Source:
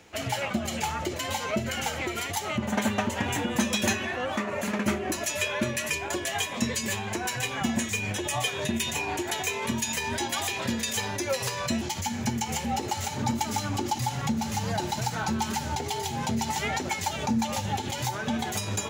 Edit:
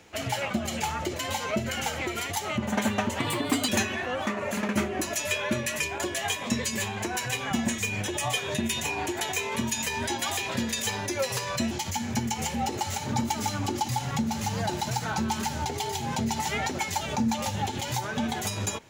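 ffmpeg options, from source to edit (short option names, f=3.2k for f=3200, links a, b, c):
-filter_complex "[0:a]asplit=3[a][b][c];[a]atrim=end=3.194[d];[b]atrim=start=3.19:end=3.79,asetpts=PTS-STARTPTS,asetrate=53361,aresample=44100[e];[c]atrim=start=3.786[f];[d][e]acrossfade=d=0.004:c1=hsin:c2=hsin[g];[g][f]acrossfade=d=0.004:c1=hsin:c2=hsin"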